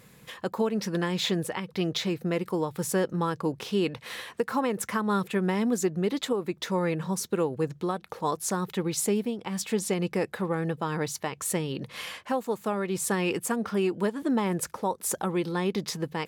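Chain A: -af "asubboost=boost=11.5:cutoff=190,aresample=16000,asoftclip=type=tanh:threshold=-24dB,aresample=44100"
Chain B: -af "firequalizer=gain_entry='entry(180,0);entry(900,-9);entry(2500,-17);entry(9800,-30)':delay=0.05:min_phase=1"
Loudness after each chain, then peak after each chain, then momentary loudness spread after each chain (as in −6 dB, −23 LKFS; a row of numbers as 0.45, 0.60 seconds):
−28.5, −32.0 LKFS; −21.0, −17.5 dBFS; 5, 8 LU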